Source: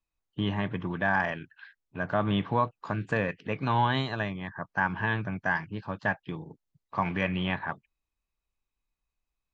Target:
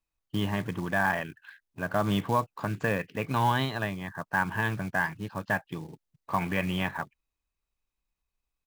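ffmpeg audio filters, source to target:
-af "atempo=1.1,acrusher=bits=5:mode=log:mix=0:aa=0.000001"

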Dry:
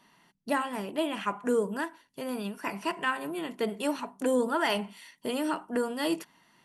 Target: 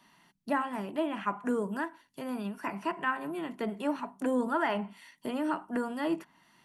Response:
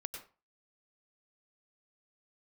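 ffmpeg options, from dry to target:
-filter_complex "[0:a]equalizer=f=470:t=o:w=0.41:g=-7,acrossover=split=210|2200[s0][s1][s2];[s2]acompressor=threshold=0.00178:ratio=6[s3];[s0][s1][s3]amix=inputs=3:normalize=0"

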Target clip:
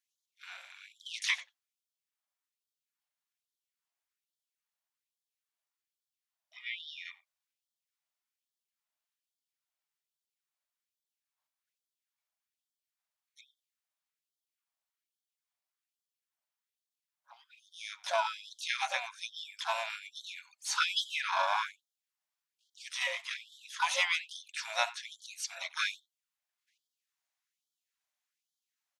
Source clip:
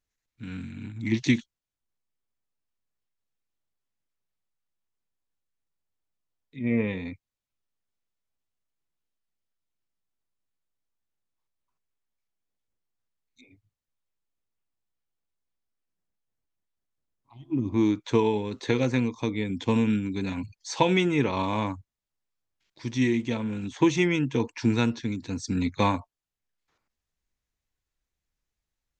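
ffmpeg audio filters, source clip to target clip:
-filter_complex "[0:a]asplit=3[s0][s1][s2];[s1]asetrate=22050,aresample=44100,atempo=2,volume=0.158[s3];[s2]asetrate=66075,aresample=44100,atempo=0.66742,volume=0.447[s4];[s0][s3][s4]amix=inputs=3:normalize=0,asplit=2[s5][s6];[s6]adelay=90,highpass=300,lowpass=3400,asoftclip=type=hard:threshold=0.188,volume=0.112[s7];[s5][s7]amix=inputs=2:normalize=0,afftfilt=real='re*gte(b*sr/1024,530*pow(3100/530,0.5+0.5*sin(2*PI*1.2*pts/sr)))':imag='im*gte(b*sr/1024,530*pow(3100/530,0.5+0.5*sin(2*PI*1.2*pts/sr)))':win_size=1024:overlap=0.75"

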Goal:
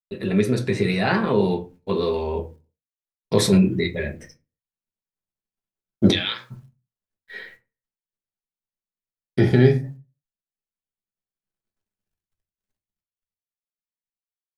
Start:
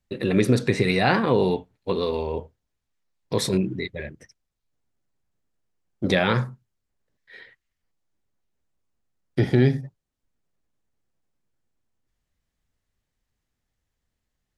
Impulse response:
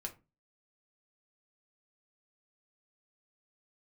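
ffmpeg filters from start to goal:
-filter_complex "[0:a]asplit=3[s0][s1][s2];[s0]afade=t=out:st=6.1:d=0.02[s3];[s1]bandpass=f=3400:t=q:w=3.7:csg=0,afade=t=in:st=6.1:d=0.02,afade=t=out:st=6.5:d=0.02[s4];[s2]afade=t=in:st=6.5:d=0.02[s5];[s3][s4][s5]amix=inputs=3:normalize=0,acrusher=bits=11:mix=0:aa=0.000001,dynaudnorm=f=280:g=13:m=5.62,agate=range=0.0224:threshold=0.00631:ratio=3:detection=peak[s6];[1:a]atrim=start_sample=2205[s7];[s6][s7]afir=irnorm=-1:irlink=0"

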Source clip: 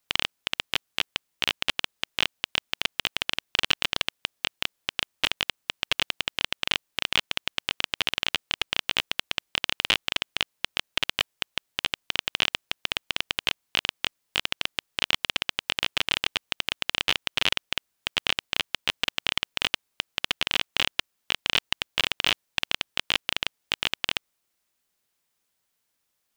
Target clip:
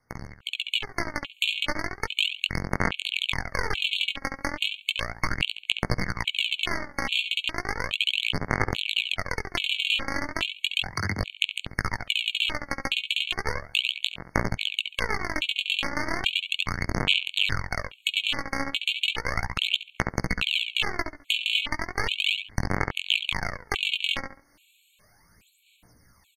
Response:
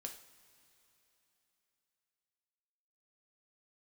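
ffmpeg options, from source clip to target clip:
-filter_complex "[0:a]asplit=3[s0][s1][s2];[s0]afade=t=out:st=10.78:d=0.02[s3];[s1]afreqshift=68,afade=t=in:st=10.78:d=0.02,afade=t=out:st=11.19:d=0.02[s4];[s2]afade=t=in:st=11.19:d=0.02[s5];[s3][s4][s5]amix=inputs=3:normalize=0,bass=f=250:g=9,treble=f=4000:g=-7,asplit=2[s6][s7];[s7]adelay=69,lowpass=f=2400:p=1,volume=0.562,asplit=2[s8][s9];[s9]adelay=69,lowpass=f=2400:p=1,volume=0.23,asplit=2[s10][s11];[s11]adelay=69,lowpass=f=2400:p=1,volume=0.23[s12];[s6][s8][s10][s12]amix=inputs=4:normalize=0,flanger=delay=16:depth=5.7:speed=0.15,acompressor=threshold=0.00447:ratio=4,aphaser=in_gain=1:out_gain=1:delay=3.7:decay=0.63:speed=0.35:type=sinusoidal,asplit=2[s13][s14];[s14]highshelf=f=8900:g=-11.5[s15];[1:a]atrim=start_sample=2205,adelay=10[s16];[s15][s16]afir=irnorm=-1:irlink=0,volume=0.168[s17];[s13][s17]amix=inputs=2:normalize=0,aresample=32000,aresample=44100,asoftclip=type=tanh:threshold=0.0891,dynaudnorm=f=360:g=3:m=5.96,afftfilt=real='re*gt(sin(2*PI*1.2*pts/sr)*(1-2*mod(floor(b*sr/1024/2200),2)),0)':imag='im*gt(sin(2*PI*1.2*pts/sr)*(1-2*mod(floor(b*sr/1024/2200),2)),0)':win_size=1024:overlap=0.75,volume=2.37"

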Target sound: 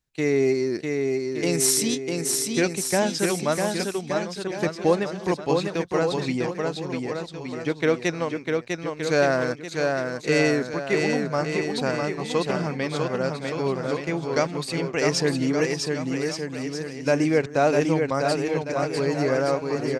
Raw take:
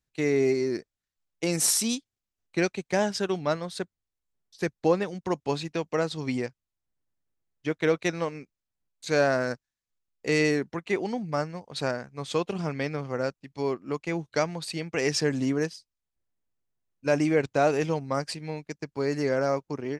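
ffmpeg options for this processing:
-af "aecho=1:1:650|1170|1586|1919|2185:0.631|0.398|0.251|0.158|0.1,volume=1.33"

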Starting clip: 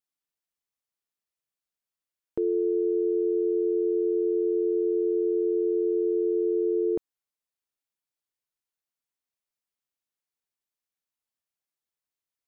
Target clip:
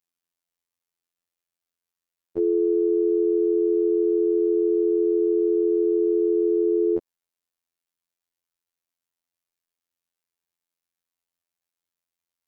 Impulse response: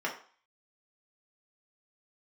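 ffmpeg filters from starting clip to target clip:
-af "afftfilt=real='hypot(re,im)*cos(PI*b)':imag='0':win_size=2048:overlap=0.75,acontrast=26"

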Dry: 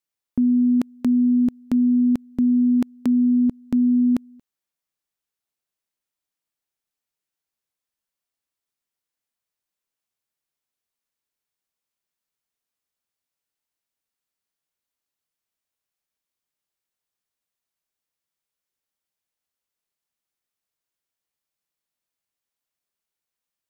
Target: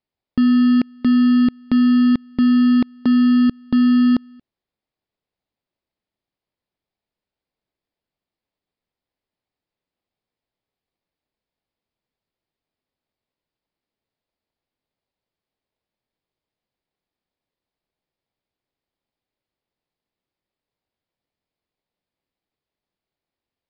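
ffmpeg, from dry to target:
-filter_complex "[0:a]asplit=2[s0][s1];[s1]acrusher=samples=29:mix=1:aa=0.000001,volume=0.596[s2];[s0][s2]amix=inputs=2:normalize=0,aresample=11025,aresample=44100"

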